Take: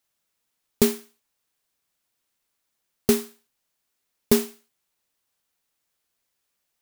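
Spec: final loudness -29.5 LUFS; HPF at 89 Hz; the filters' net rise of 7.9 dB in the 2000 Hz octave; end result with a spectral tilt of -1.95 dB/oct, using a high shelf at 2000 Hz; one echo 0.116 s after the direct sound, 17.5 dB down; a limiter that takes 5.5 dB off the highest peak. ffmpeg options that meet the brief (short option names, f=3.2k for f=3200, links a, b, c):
-af "highpass=89,highshelf=f=2k:g=7.5,equalizer=f=2k:t=o:g=5,alimiter=limit=-5dB:level=0:latency=1,aecho=1:1:116:0.133,volume=-6.5dB"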